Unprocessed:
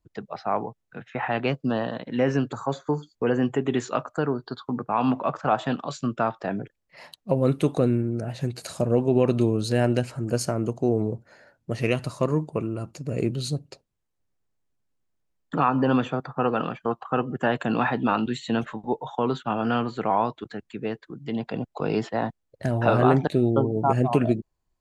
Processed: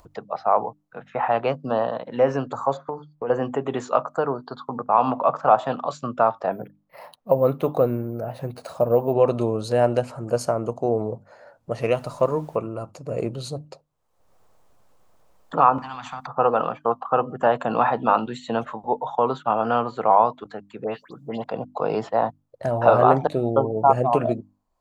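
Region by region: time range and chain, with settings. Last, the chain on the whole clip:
2.77–3.30 s: distance through air 300 m + compression 8:1, threshold -26 dBFS + hard clipper -21.5 dBFS
6.52–9.13 s: treble shelf 4.5 kHz -7.5 dB + careless resampling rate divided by 3×, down filtered, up hold
11.91–12.55 s: band-stop 1.1 kHz, Q 11 + added noise pink -55 dBFS
15.78–16.27 s: Chebyshev band-stop 260–770 Hz, order 4 + compression, threshold -28 dBFS + spectrum-flattening compressor 2:1
20.84–21.44 s: treble shelf 6 kHz +11 dB + phase dispersion highs, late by 100 ms, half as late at 2.7 kHz
whole clip: high-order bell 780 Hz +10.5 dB; hum notches 50/100/150/200/250/300 Hz; upward compressor, threshold -35 dBFS; trim -3.5 dB

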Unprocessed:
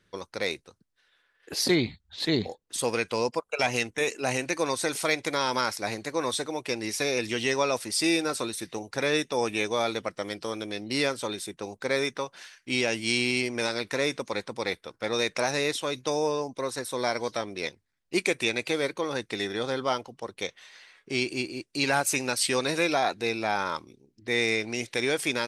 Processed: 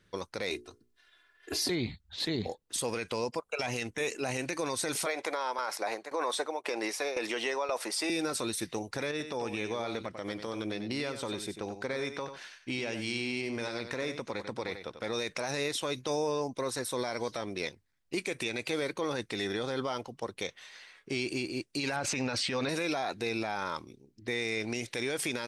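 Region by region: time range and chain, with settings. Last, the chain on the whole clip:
0.50–1.70 s: hum notches 60/120/180/240/300/360/420/480 Hz + comb 2.9 ms, depth 90%
5.06–8.10 s: high-pass 370 Hz + peaking EQ 820 Hz +12 dB 2.6 oct + tremolo saw down 1.9 Hz, depth 90%
9.11–15.01 s: treble shelf 6.7 kHz -9.5 dB + compression 4:1, threshold -31 dBFS + delay 93 ms -9.5 dB
21.96–22.69 s: distance through air 150 m + band-stop 370 Hz, Q 6.3 + level flattener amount 70%
whole clip: bass shelf 160 Hz +3.5 dB; peak limiter -22 dBFS

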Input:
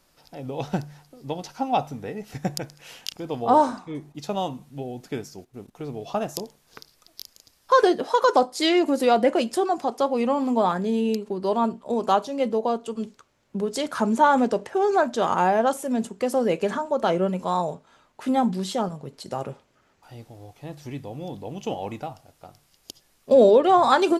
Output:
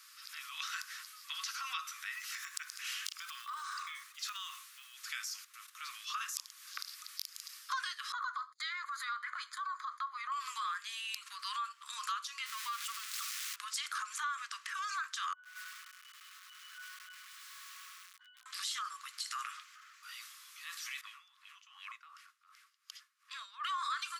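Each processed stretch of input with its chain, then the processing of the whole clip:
2.15–4.94 s: block-companded coder 7-bit + compression 10:1, threshold -33 dBFS
8.12–10.32 s: boxcar filter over 16 samples + gate -45 dBFS, range -43 dB
12.46–13.56 s: zero-crossing glitches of -26.5 dBFS + low-pass 3.2 kHz 6 dB/octave + upward compressor, threshold -32 dBFS
15.33–18.46 s: compression 10:1, threshold -28 dBFS + pitch-class resonator F#, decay 0.3 s + bit-crushed delay 102 ms, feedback 80%, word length 9-bit, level -4.5 dB
21.01–23.65 s: treble shelf 6.6 kHz +11 dB + wah-wah 2.7 Hz 200–2100 Hz, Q 2.2
whole clip: Chebyshev high-pass 1.1 kHz, order 8; transient shaper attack -5 dB, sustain +5 dB; compression 6:1, threshold -46 dBFS; trim +9 dB

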